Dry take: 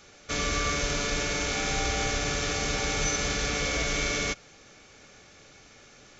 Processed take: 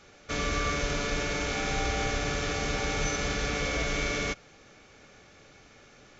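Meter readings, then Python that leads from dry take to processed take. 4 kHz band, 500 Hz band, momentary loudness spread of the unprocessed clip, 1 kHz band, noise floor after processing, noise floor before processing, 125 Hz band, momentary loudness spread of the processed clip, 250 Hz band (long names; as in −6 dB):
−4.0 dB, 0.0 dB, 3 LU, −0.5 dB, −56 dBFS, −54 dBFS, 0.0 dB, 2 LU, 0.0 dB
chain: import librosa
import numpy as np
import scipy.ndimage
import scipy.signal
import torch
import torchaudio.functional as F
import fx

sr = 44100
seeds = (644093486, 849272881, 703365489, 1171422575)

y = fx.high_shelf(x, sr, hz=4600.0, db=-9.5)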